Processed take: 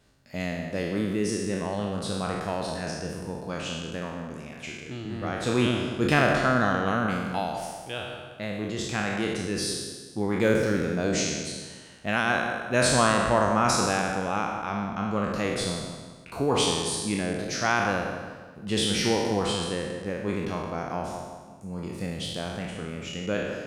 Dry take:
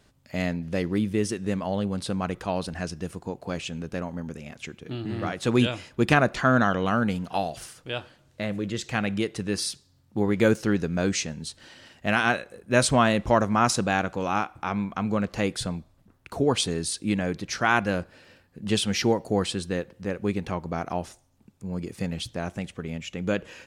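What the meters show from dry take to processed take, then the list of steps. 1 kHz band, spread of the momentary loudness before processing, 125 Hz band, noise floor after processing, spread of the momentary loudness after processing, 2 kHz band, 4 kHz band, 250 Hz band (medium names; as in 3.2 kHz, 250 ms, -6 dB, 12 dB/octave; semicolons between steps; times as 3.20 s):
0.0 dB, 13 LU, -2.0 dB, -46 dBFS, 14 LU, 0.0 dB, +1.5 dB, -2.0 dB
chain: spectral sustain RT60 1.28 s; bucket-brigade echo 182 ms, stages 2048, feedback 37%, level -9 dB; trim -4.5 dB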